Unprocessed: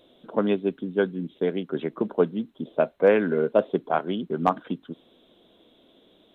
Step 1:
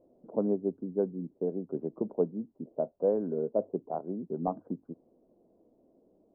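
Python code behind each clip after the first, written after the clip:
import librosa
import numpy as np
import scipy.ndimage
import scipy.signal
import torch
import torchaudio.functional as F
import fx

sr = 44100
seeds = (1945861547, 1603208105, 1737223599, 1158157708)

y = scipy.signal.sosfilt(scipy.signal.cheby2(4, 70, 3400.0, 'lowpass', fs=sr, output='sos'), x)
y = fx.hum_notches(y, sr, base_hz=50, count=2)
y = fx.rider(y, sr, range_db=10, speed_s=2.0)
y = F.gain(torch.from_numpy(y), -8.0).numpy()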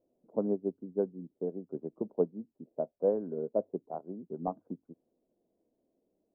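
y = fx.upward_expand(x, sr, threshold_db=-48.0, expansion=1.5)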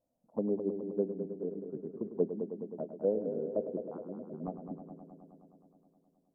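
y = fx.env_phaser(x, sr, low_hz=380.0, high_hz=1200.0, full_db=-27.5)
y = fx.env_lowpass_down(y, sr, base_hz=1100.0, full_db=-32.5)
y = fx.echo_heads(y, sr, ms=105, heads='first and second', feedback_pct=70, wet_db=-11)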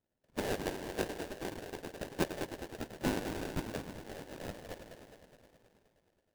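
y = fx.band_invert(x, sr, width_hz=2000)
y = fx.sample_hold(y, sr, seeds[0], rate_hz=1200.0, jitter_pct=20)
y = F.gain(torch.from_numpy(y), -3.5).numpy()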